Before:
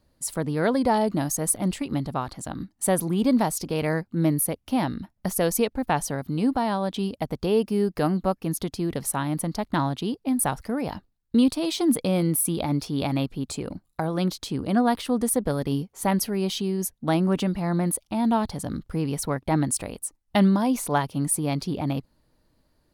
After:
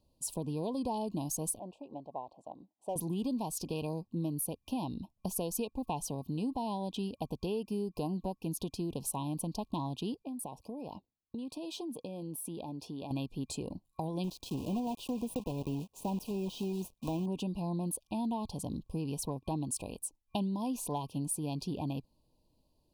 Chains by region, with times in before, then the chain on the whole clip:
1.59–2.96 band-pass 660 Hz, Q 2.2 + hard clip -19.5 dBFS
10.22–13.11 HPF 230 Hz 6 dB/oct + high shelf 2200 Hz -8 dB + compressor 12:1, threshold -30 dBFS
14.24–17.26 block floating point 3-bit + de-esser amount 75%
whole clip: FFT band-reject 1100–2400 Hz; dynamic EQ 580 Hz, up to -4 dB, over -37 dBFS, Q 3.3; compressor 5:1, threshold -25 dBFS; gain -6.5 dB

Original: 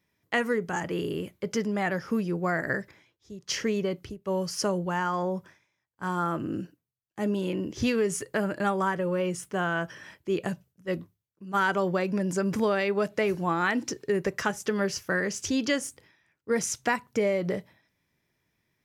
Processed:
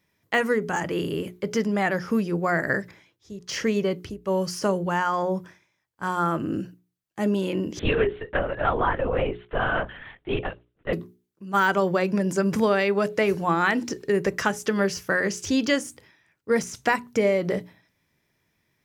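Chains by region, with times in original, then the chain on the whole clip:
7.79–10.93 steep high-pass 240 Hz 96 dB/oct + LPC vocoder at 8 kHz whisper
whole clip: notches 60/120/180/240/300/360/420 Hz; de-esser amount 75%; gain +4.5 dB

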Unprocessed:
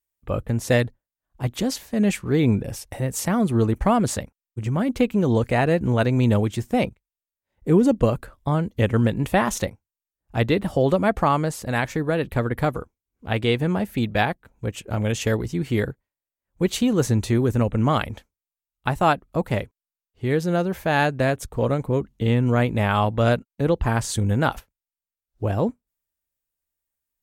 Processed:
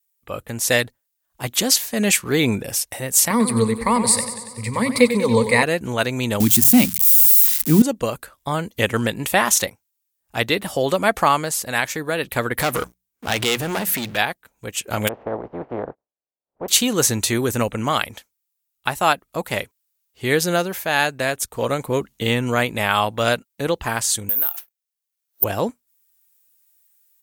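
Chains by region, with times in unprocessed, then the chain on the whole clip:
3.3–5.63 ripple EQ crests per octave 0.94, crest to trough 16 dB + warbling echo 94 ms, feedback 63%, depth 66 cents, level -10.5 dB
6.4–7.82 switching spikes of -21.5 dBFS + resonant low shelf 340 Hz +9.5 dB, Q 3 + notches 60/120/180 Hz
12.59–14.17 notches 60/120/180 Hz + compressor 4:1, threshold -27 dBFS + sample leveller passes 3
15.07–16.68 spectral contrast lowered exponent 0.31 + ladder low-pass 810 Hz, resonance 30%
24.29–25.44 HPF 280 Hz + compressor, threshold -29 dBFS + careless resampling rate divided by 3×, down filtered, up zero stuff
whole clip: tilt +3.5 dB/oct; AGC; gain -1 dB

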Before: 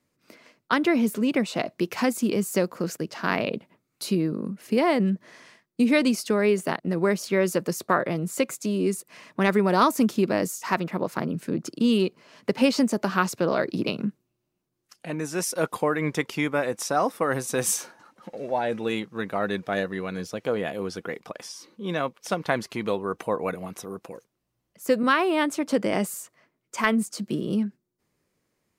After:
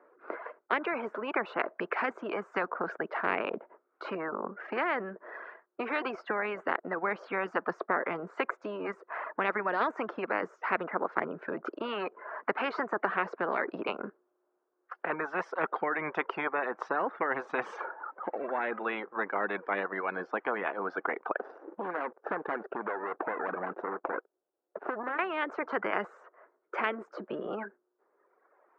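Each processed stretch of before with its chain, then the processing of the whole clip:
21.39–25.19 median filter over 41 samples + compressor 10:1, threshold -36 dBFS + sample leveller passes 2
whole clip: elliptic band-pass 390–1500 Hz, stop band 80 dB; reverb removal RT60 1.3 s; spectral compressor 4:1

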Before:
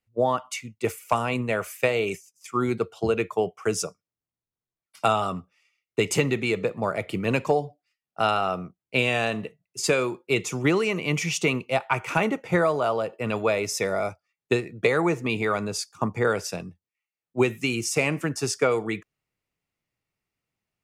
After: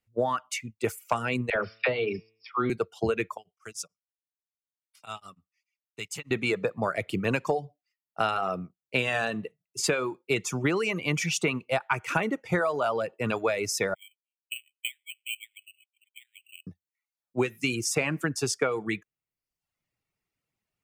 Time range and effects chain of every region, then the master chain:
1.5–2.7 brick-wall FIR low-pass 5600 Hz + de-hum 111 Hz, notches 35 + dispersion lows, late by 53 ms, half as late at 610 Hz
3.37–6.31 passive tone stack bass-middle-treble 5-5-5 + beating tremolo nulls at 6.8 Hz
13.94–16.67 steep high-pass 2400 Hz 96 dB/oct + careless resampling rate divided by 8×, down filtered, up hold
whole clip: reverb removal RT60 0.74 s; dynamic EQ 1600 Hz, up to +6 dB, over -45 dBFS, Q 3.8; compressor 4:1, threshold -22 dBFS

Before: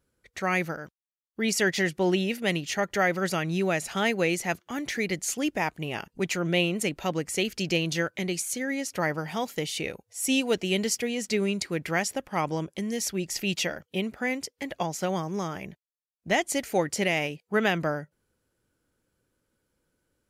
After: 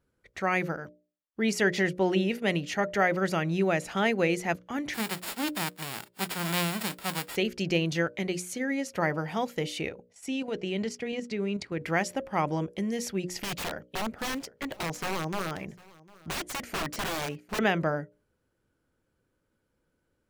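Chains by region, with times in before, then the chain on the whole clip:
4.93–7.35 spectral whitening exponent 0.1 + HPF 150 Hz 6 dB/oct + notch 6100 Hz, Q 5.6
9.89–11.81 level quantiser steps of 10 dB + air absorption 55 m
13.42–17.59 wrapped overs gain 24.5 dB + echo 0.752 s -23 dB
whole clip: high shelf 3600 Hz -10 dB; notches 60/120/180/240/300/360/420/480/540/600 Hz; gain +1 dB

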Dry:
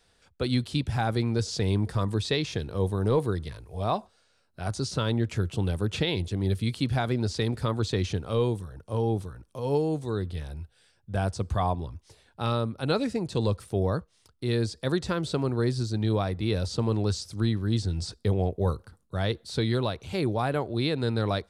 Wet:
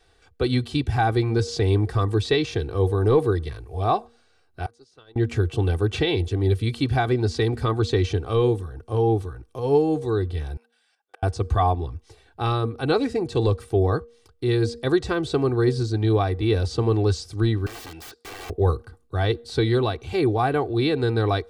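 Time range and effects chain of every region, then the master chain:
4.66–5.16 HPF 410 Hz 6 dB/oct + gate -31 dBFS, range -25 dB + compressor, threshold -51 dBFS
10.57–11.23 inverse Chebyshev high-pass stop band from 190 Hz, stop band 60 dB + flipped gate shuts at -34 dBFS, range -32 dB + level quantiser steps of 10 dB
17.66–18.5 weighting filter A + wrapped overs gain 36.5 dB
whole clip: high shelf 3900 Hz -8 dB; comb 2.6 ms, depth 68%; de-hum 235.3 Hz, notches 2; gain +4.5 dB

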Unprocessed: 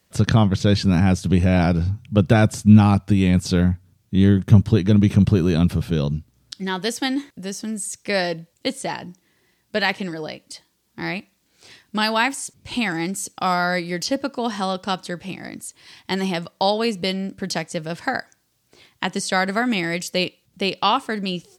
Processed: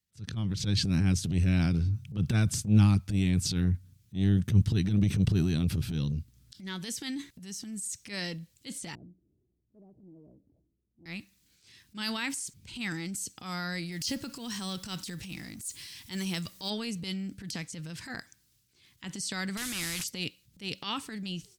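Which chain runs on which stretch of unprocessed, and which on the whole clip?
8.95–11.06 steep low-pass 660 Hz 48 dB/oct + comb 2.9 ms, depth 37% + compressor 2:1, threshold -45 dBFS
13.92–16.7 G.711 law mismatch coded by mu + high shelf 5600 Hz +8.5 dB
19.57–20.04 delta modulation 64 kbps, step -33.5 dBFS + spectral compressor 2:1
whole clip: passive tone stack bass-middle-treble 6-0-2; AGC gain up to 12.5 dB; transient shaper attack -11 dB, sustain +6 dB; gain -4.5 dB

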